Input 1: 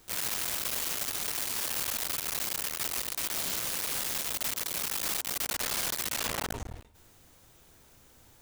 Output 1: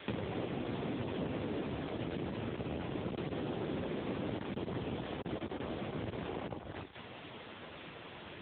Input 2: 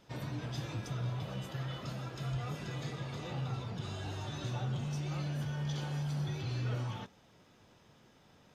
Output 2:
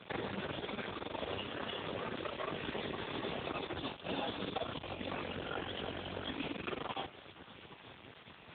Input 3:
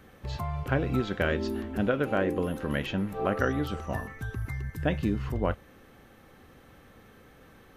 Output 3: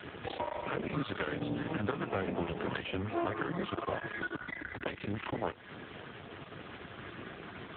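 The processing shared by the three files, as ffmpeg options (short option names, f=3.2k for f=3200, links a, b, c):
-filter_complex "[0:a]aemphasis=mode=production:type=50fm,bandreject=f=64.84:t=h:w=4,bandreject=f=129.68:t=h:w=4,acompressor=threshold=-32dB:ratio=4,afreqshift=-100,acrusher=bits=7:dc=4:mix=0:aa=0.000001,aeval=exprs='max(val(0),0)':c=same,acrossover=split=250|690[a][b][c];[a]acompressor=threshold=-52dB:ratio=4[d];[b]acompressor=threshold=-54dB:ratio=4[e];[c]acompressor=threshold=-52dB:ratio=4[f];[d][e][f]amix=inputs=3:normalize=0,volume=17.5dB" -ar 8000 -c:a libopencore_amrnb -b:a 6700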